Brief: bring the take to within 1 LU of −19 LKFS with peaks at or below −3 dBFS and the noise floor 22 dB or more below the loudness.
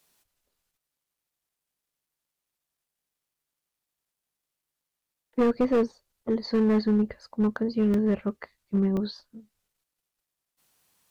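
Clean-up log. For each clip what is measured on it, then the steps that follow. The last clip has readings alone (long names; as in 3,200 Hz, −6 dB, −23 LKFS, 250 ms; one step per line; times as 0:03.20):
share of clipped samples 1.2%; peaks flattened at −17.5 dBFS; number of dropouts 2; longest dropout 2.3 ms; integrated loudness −26.0 LKFS; sample peak −17.5 dBFS; target loudness −19.0 LKFS
→ clipped peaks rebuilt −17.5 dBFS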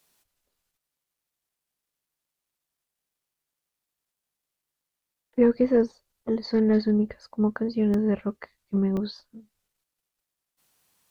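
share of clipped samples 0.0%; number of dropouts 2; longest dropout 2.3 ms
→ repair the gap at 0:07.94/0:08.97, 2.3 ms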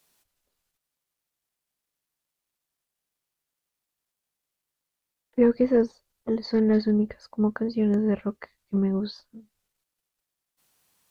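number of dropouts 0; integrated loudness −25.0 LKFS; sample peak −9.5 dBFS; target loudness −19.0 LKFS
→ level +6 dB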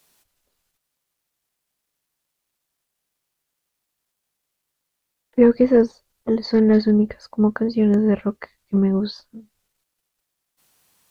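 integrated loudness −19.0 LKFS; sample peak −3.5 dBFS; background noise floor −80 dBFS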